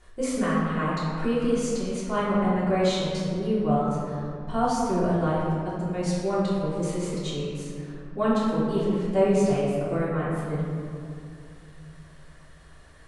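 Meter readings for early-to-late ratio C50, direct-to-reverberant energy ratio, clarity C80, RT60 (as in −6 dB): −1.5 dB, −9.5 dB, 0.5 dB, 2.5 s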